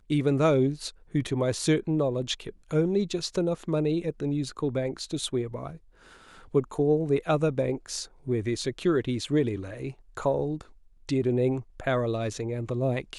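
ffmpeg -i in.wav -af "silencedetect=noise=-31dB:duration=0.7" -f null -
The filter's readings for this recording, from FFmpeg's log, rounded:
silence_start: 5.71
silence_end: 6.55 | silence_duration: 0.84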